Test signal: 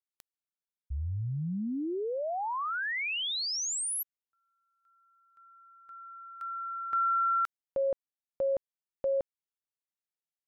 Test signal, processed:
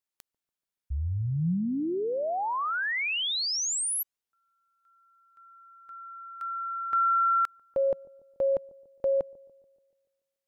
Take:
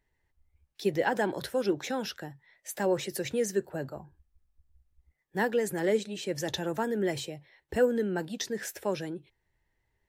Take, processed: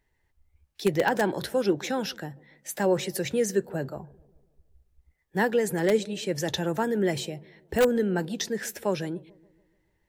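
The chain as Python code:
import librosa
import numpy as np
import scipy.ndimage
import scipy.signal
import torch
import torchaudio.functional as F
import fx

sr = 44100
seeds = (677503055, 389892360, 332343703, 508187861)

p1 = fx.dynamic_eq(x, sr, hz=170.0, q=3.8, threshold_db=-52.0, ratio=4.0, max_db=4)
p2 = (np.mod(10.0 ** (16.0 / 20.0) * p1 + 1.0, 2.0) - 1.0) / 10.0 ** (16.0 / 20.0)
p3 = p1 + F.gain(torch.from_numpy(p2), -6.0).numpy()
y = fx.echo_wet_lowpass(p3, sr, ms=144, feedback_pct=52, hz=640.0, wet_db=-21.0)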